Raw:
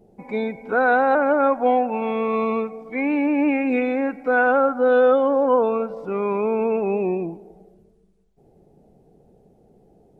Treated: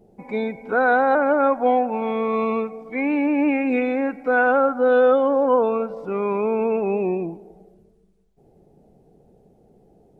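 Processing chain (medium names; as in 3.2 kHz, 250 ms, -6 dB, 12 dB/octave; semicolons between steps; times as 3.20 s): 0.71–2.39 s: band-stop 2.7 kHz, Q 12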